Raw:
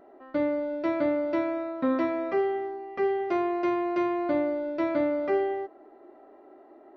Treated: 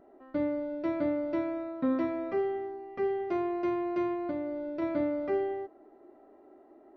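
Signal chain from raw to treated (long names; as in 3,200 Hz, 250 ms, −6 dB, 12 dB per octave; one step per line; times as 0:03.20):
low-shelf EQ 280 Hz +11 dB
0:04.13–0:04.82: downward compressor, threshold −23 dBFS, peak gain reduction 5.5 dB
level −7.5 dB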